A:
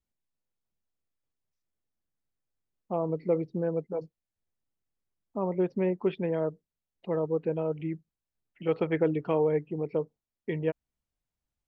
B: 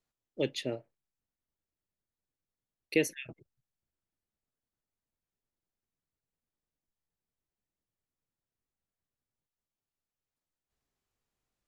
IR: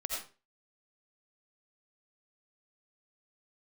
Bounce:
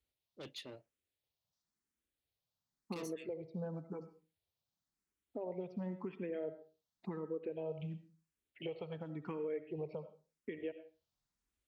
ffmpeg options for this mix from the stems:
-filter_complex "[0:a]acompressor=threshold=-34dB:ratio=6,asplit=2[a][b];[b]afreqshift=0.94[c];[a][c]amix=inputs=2:normalize=1,volume=-1dB,asplit=2[d][e];[e]volume=-10dB[f];[1:a]asoftclip=type=tanh:threshold=-33dB,volume=-11.5dB[g];[2:a]atrim=start_sample=2205[h];[f][h]afir=irnorm=-1:irlink=0[i];[d][g][i]amix=inputs=3:normalize=0,highpass=40,equalizer=f=3.9k:t=o:w=0.97:g=6,alimiter=level_in=7.5dB:limit=-24dB:level=0:latency=1:release=413,volume=-7.5dB"

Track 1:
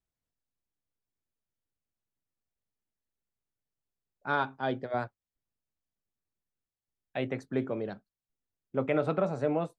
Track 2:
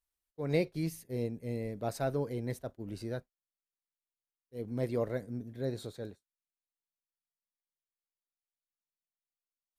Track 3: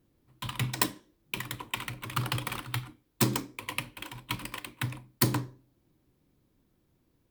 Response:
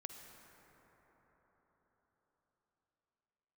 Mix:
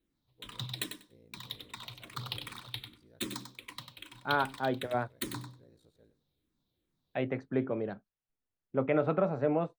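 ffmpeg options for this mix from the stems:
-filter_complex "[0:a]lowpass=2.8k,volume=0dB,asplit=2[a][b];[1:a]alimiter=level_in=4dB:limit=-24dB:level=0:latency=1:release=33,volume=-4dB,aeval=exprs='val(0)*sin(2*PI*28*n/s)':c=same,volume=-20dB,asplit=2[c][d];[d]volume=-14.5dB[e];[2:a]equalizer=f=3.8k:t=o:w=0.51:g=15,asplit=2[f][g];[g]afreqshift=-2.5[h];[f][h]amix=inputs=2:normalize=1,volume=-9.5dB,asplit=2[i][j];[j]volume=-8dB[k];[b]apad=whole_len=431398[l];[c][l]sidechaincompress=threshold=-31dB:ratio=8:attack=16:release=630[m];[e][k]amix=inputs=2:normalize=0,aecho=0:1:96|192|288:1|0.15|0.0225[n];[a][m][i][n]amix=inputs=4:normalize=0"

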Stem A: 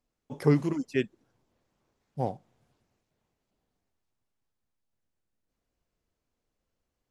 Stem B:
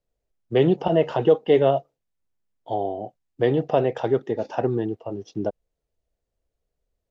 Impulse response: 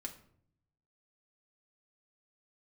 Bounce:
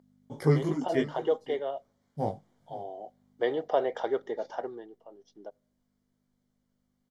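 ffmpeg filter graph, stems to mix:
-filter_complex "[0:a]flanger=delay=16.5:depth=3.5:speed=0.6,volume=3dB,asplit=3[a][b][c];[b]volume=-16.5dB[d];[1:a]aeval=exprs='val(0)+0.0126*(sin(2*PI*50*n/s)+sin(2*PI*2*50*n/s)/2+sin(2*PI*3*50*n/s)/3+sin(2*PI*4*50*n/s)/4+sin(2*PI*5*50*n/s)/5)':c=same,highpass=480,volume=6.5dB,afade=t=out:st=0.94:d=0.71:silence=0.298538,afade=t=in:st=2.78:d=0.55:silence=0.334965,afade=t=out:st=4.3:d=0.57:silence=0.266073,asplit=2[e][f];[f]volume=-19.5dB[g];[c]apad=whole_len=313279[h];[e][h]sidechaincompress=threshold=-40dB:ratio=4:attack=16:release=154[i];[2:a]atrim=start_sample=2205[j];[g][j]afir=irnorm=-1:irlink=0[k];[d]aecho=0:1:523:1[l];[a][i][k][l]amix=inputs=4:normalize=0,asuperstop=centerf=2600:order=4:qfactor=5.1"

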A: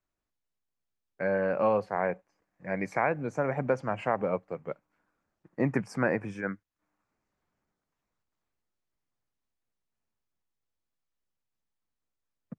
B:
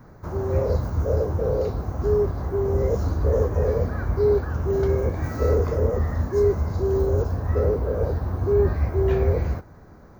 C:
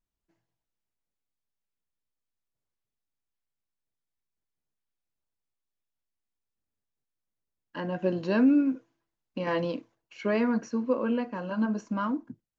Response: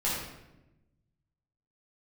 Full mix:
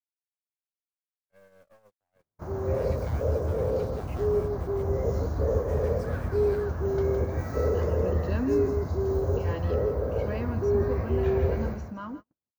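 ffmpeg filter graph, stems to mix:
-filter_complex "[0:a]acompressor=threshold=-30dB:ratio=6,acrusher=bits=7:mix=0:aa=0.000001,aeval=exprs='(tanh(35.5*val(0)+0.5)-tanh(0.5))/35.5':c=same,adelay=100,volume=-6dB[a];[1:a]highpass=57,equalizer=f=630:w=3.7:g=3,adelay=2150,volume=-5.5dB,asplit=2[b][c];[c]volume=-6dB[d];[2:a]volume=-8.5dB,asplit=2[e][f];[f]volume=-13.5dB[g];[d][g]amix=inputs=2:normalize=0,aecho=0:1:163:1[h];[a][b][e][h]amix=inputs=4:normalize=0,agate=range=-41dB:threshold=-39dB:ratio=16:detection=peak"

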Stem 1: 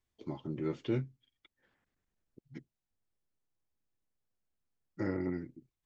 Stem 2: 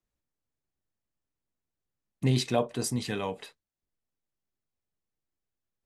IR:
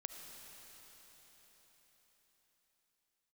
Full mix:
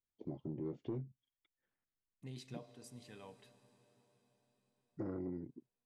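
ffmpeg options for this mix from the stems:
-filter_complex "[0:a]afwtdn=0.00794,asoftclip=type=tanh:threshold=-25dB,volume=0.5dB,asplit=2[a][b];[1:a]volume=-18dB,asplit=2[c][d];[d]volume=-10dB[e];[b]apad=whole_len=258045[f];[c][f]sidechaincompress=threshold=-53dB:ratio=8:attack=8.1:release=1410[g];[2:a]atrim=start_sample=2205[h];[e][h]afir=irnorm=-1:irlink=0[i];[a][g][i]amix=inputs=3:normalize=0,acompressor=threshold=-40dB:ratio=3"

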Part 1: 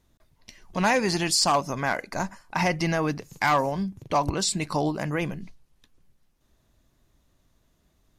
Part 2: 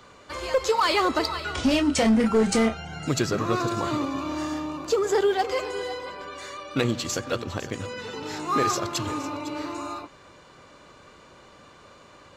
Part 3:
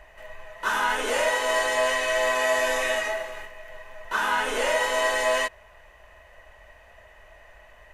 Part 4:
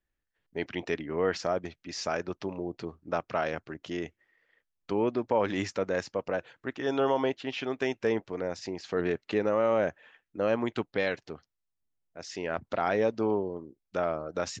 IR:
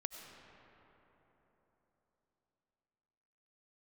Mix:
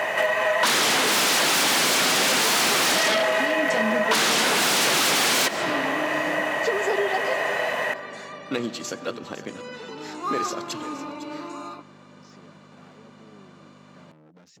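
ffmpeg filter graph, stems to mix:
-filter_complex "[0:a]adelay=1100,volume=-11dB[a];[1:a]aeval=exprs='val(0)+0.0126*(sin(2*PI*50*n/s)+sin(2*PI*2*50*n/s)/2+sin(2*PI*3*50*n/s)/3+sin(2*PI*4*50*n/s)/4+sin(2*PI*5*50*n/s)/5)':c=same,adelay=1750,volume=-4dB,asplit=2[b][c];[c]volume=-10.5dB[d];[2:a]aeval=exprs='0.266*sin(PI/2*7.94*val(0)/0.266)':c=same,volume=2dB,asplit=2[e][f];[f]volume=-4dB[g];[3:a]asubboost=boost=9:cutoff=230,acompressor=threshold=-27dB:ratio=6,asoftclip=type=hard:threshold=-36dB,volume=-12dB[h];[4:a]atrim=start_sample=2205[i];[d][g]amix=inputs=2:normalize=0[j];[j][i]afir=irnorm=-1:irlink=0[k];[a][b][e][h][k]amix=inputs=5:normalize=0,highpass=f=170:w=0.5412,highpass=f=170:w=1.3066,highshelf=f=6.5k:g=-4,acompressor=threshold=-18dB:ratio=12"

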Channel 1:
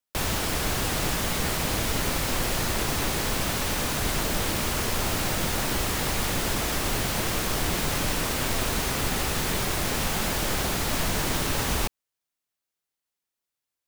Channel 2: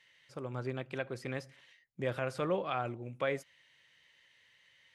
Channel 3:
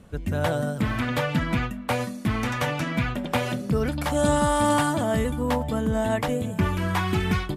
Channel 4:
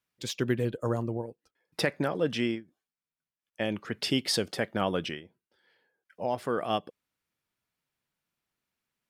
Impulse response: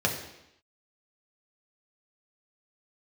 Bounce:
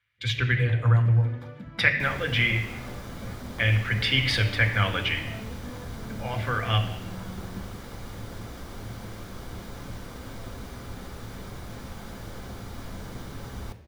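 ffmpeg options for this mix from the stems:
-filter_complex "[0:a]adelay=1850,volume=-18dB,asplit=2[a][b];[b]volume=-13dB[c];[1:a]volume=-18.5dB[d];[2:a]acompressor=threshold=-30dB:ratio=6,adelay=250,volume=-18.5dB,asplit=2[e][f];[f]volume=-9dB[g];[3:a]firequalizer=gain_entry='entry(110,0);entry(180,-21);entry(2100,13);entry(5300,-7)':delay=0.05:min_phase=1,volume=2.5dB,asplit=2[h][i];[i]volume=-9dB[j];[4:a]atrim=start_sample=2205[k];[c][g][j]amix=inputs=3:normalize=0[l];[l][k]afir=irnorm=-1:irlink=0[m];[a][d][e][h][m]amix=inputs=5:normalize=0,bass=f=250:g=7,treble=f=4k:g=-6"

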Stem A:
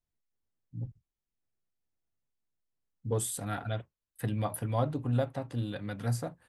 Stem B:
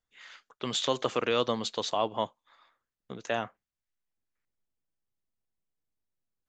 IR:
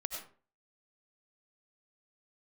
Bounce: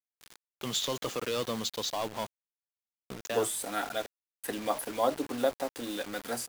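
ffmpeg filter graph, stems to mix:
-filter_complex "[0:a]highpass=f=300:w=0.5412,highpass=f=300:w=1.3066,acrossover=split=3600[a][b];[b]acompressor=threshold=-44dB:ratio=4:attack=1:release=60[c];[a][c]amix=inputs=2:normalize=0,adelay=250,volume=-1.5dB[d];[1:a]asoftclip=type=tanh:threshold=-24dB,volume=-8dB[e];[d][e]amix=inputs=2:normalize=0,bass=f=250:g=3,treble=f=4k:g=7,acontrast=49,acrusher=bits=6:mix=0:aa=0.000001"

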